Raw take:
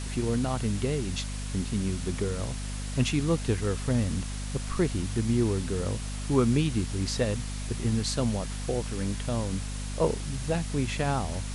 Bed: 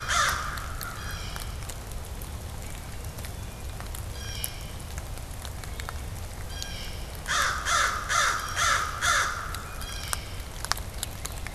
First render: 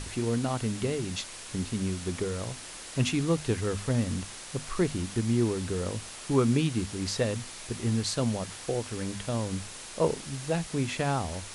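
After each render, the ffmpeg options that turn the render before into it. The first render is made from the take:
-af "bandreject=f=50:t=h:w=6,bandreject=f=100:t=h:w=6,bandreject=f=150:t=h:w=6,bandreject=f=200:t=h:w=6,bandreject=f=250:t=h:w=6"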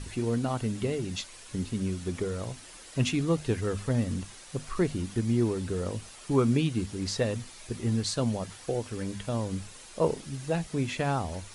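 -af "afftdn=nr=8:nf=-43"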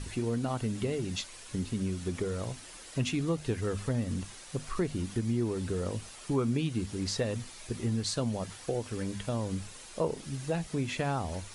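-af "acompressor=threshold=0.0355:ratio=2"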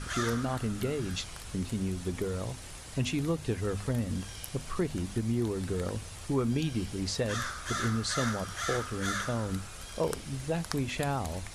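-filter_complex "[1:a]volume=0.299[s0];[0:a][s0]amix=inputs=2:normalize=0"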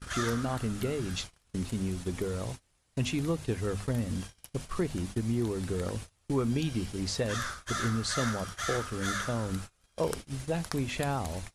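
-af "agate=range=0.0447:threshold=0.0126:ratio=16:detection=peak"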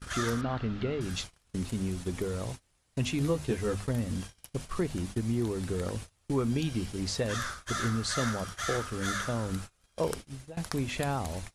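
-filter_complex "[0:a]asettb=1/sr,asplit=3[s0][s1][s2];[s0]atrim=end=0.414[s3];[s1]atrim=start=0.41:end=1.01,asetpts=PTS-STARTPTS,afade=t=in:d=0.004:c=qsin,afade=t=out:st=0.596:d=0.004:c=qsin,lowpass=f=4100:w=0.5412,lowpass=f=4100:w=1.3066[s4];[s2]atrim=start=1.006[s5];[s3][s4]acrossfade=d=0.004:c1=hsin:c2=qsin[s6];[s6][s5]acrossfade=d=0.004:c1=qsin:c2=hsin,asettb=1/sr,asplit=3[s7][s8][s9];[s7]atrim=end=3.194[s10];[s8]atrim=start=3.19:end=3.75,asetpts=PTS-STARTPTS,afade=t=in:d=0.004:c=qsin,afade=t=out:st=0.556:d=0.004:c=qsin,asplit=2[s11][s12];[s12]adelay=14,volume=0.708[s13];[s11][s13]amix=inputs=2:normalize=0,atrim=end_sample=24696[s14];[s9]atrim=start=3.746[s15];[s10][s14]acrossfade=d=0.004:c1=hsin:c2=qsin[s16];[s16][s15]acrossfade=d=0.004:c1=qsin:c2=hsin,asplit=2[s17][s18];[s17]atrim=end=10.57,asetpts=PTS-STARTPTS,afade=t=out:st=10.1:d=0.47:silence=0.0944061[s19];[s18]atrim=start=10.57,asetpts=PTS-STARTPTS,afade=t=in:d=0.004:c=hsin:silence=0.0944061[s20];[s19][s20]concat=n=2:v=0:a=1"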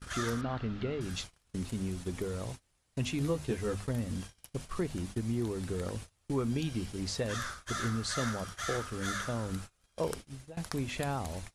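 -af "volume=0.708"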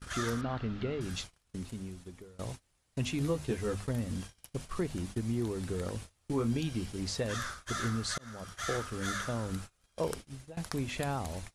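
-filter_complex "[0:a]asettb=1/sr,asplit=3[s0][s1][s2];[s0]atrim=end=6.014[s3];[s1]atrim=start=6.01:end=6.59,asetpts=PTS-STARTPTS,afade=t=in:d=0.004:c=qsin,afade=t=out:st=0.576:d=0.004:c=qsin,asplit=2[s4][s5];[s5]adelay=26,volume=0.355[s6];[s4][s6]amix=inputs=2:normalize=0,atrim=end_sample=25578[s7];[s2]atrim=start=6.586[s8];[s3][s7]acrossfade=d=0.004:c1=hsin:c2=qsin[s9];[s9][s8]acrossfade=d=0.004:c1=qsin:c2=hsin,asplit=3[s10][s11][s12];[s10]atrim=end=2.39,asetpts=PTS-STARTPTS,afade=t=out:st=1.13:d=1.26:silence=0.0668344[s13];[s11]atrim=start=2.39:end=8.18,asetpts=PTS-STARTPTS,afade=t=in:d=0.004:c=hsin:silence=0.0668344,afade=t=out:st=5.786:d=0.004:c=hsin[s14];[s12]atrim=start=8.18,asetpts=PTS-STARTPTS,afade=t=in:d=0.46[s15];[s13][s14][s15]concat=n=3:v=0:a=1"

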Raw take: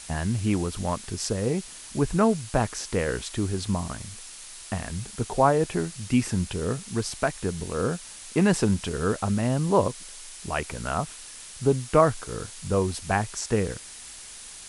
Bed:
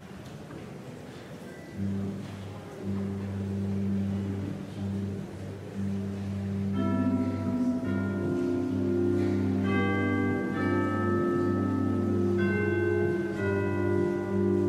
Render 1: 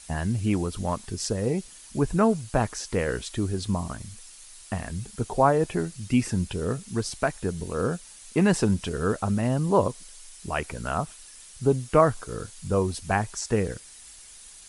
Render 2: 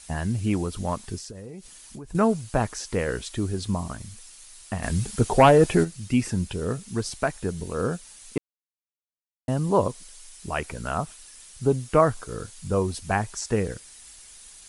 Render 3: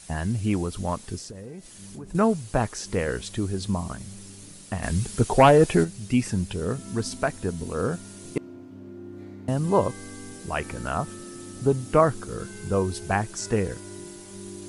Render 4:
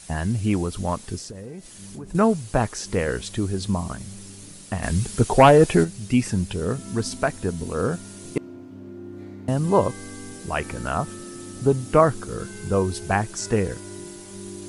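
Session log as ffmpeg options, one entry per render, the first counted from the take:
-af "afftdn=nr=8:nf=-43"
-filter_complex "[0:a]asettb=1/sr,asplit=3[s0][s1][s2];[s0]atrim=end=1.184[s3];[s1]atrim=start=1.18:end=2.15,asetpts=PTS-STARTPTS,afade=t=in:d=0.004:c=qsin,afade=t=out:st=0.966:d=0.004:c=qsin,acompressor=threshold=0.0158:ratio=8:attack=3.2:release=140:knee=1:detection=peak[s4];[s2]atrim=start=2.146[s5];[s3][s4]acrossfade=d=0.004:c1=hsin:c2=qsin[s6];[s6][s5]acrossfade=d=0.004:c1=qsin:c2=hsin,asplit=3[s7][s8][s9];[s7]afade=t=out:st=4.82:d=0.02[s10];[s8]aeval=exprs='0.398*sin(PI/2*1.58*val(0)/0.398)':c=same,afade=t=in:st=4.82:d=0.02,afade=t=out:st=5.83:d=0.02[s11];[s9]afade=t=in:st=5.83:d=0.02[s12];[s10][s11][s12]amix=inputs=3:normalize=0,asplit=3[s13][s14][s15];[s13]atrim=end=8.38,asetpts=PTS-STARTPTS,afade=t=out:st=8.376:d=0.004:c=hsin[s16];[s14]atrim=start=8.38:end=9.48,asetpts=PTS-STARTPTS,volume=0[s17];[s15]atrim=start=9.48,asetpts=PTS-STARTPTS,afade=t=in:d=0.004:c=hsin[s18];[s16][s17][s18]concat=n=3:v=0:a=1"
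-filter_complex "[1:a]volume=0.188[s0];[0:a][s0]amix=inputs=2:normalize=0"
-af "volume=1.33"

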